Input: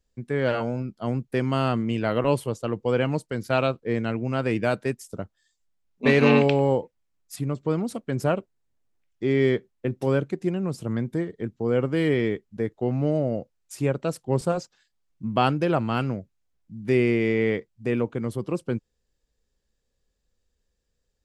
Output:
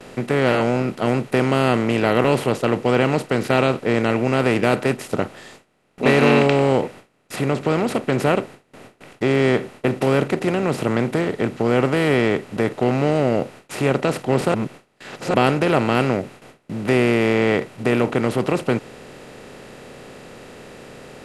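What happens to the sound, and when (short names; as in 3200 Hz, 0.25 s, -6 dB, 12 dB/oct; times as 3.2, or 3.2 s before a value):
14.54–15.34 reverse
whole clip: per-bin compression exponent 0.4; gate with hold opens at -31 dBFS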